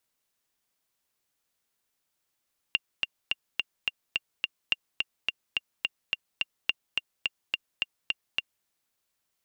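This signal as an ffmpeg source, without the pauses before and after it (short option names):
-f lavfi -i "aevalsrc='pow(10,(-10-3*gte(mod(t,7*60/213),60/213))/20)*sin(2*PI*2790*mod(t,60/213))*exp(-6.91*mod(t,60/213)/0.03)':d=5.91:s=44100"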